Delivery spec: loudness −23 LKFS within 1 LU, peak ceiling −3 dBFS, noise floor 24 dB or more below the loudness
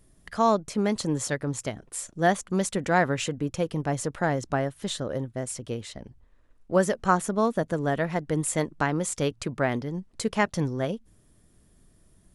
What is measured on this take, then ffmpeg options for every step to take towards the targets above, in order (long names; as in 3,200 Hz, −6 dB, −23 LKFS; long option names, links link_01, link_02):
integrated loudness −27.5 LKFS; sample peak −8.0 dBFS; target loudness −23.0 LKFS
→ -af "volume=4.5dB"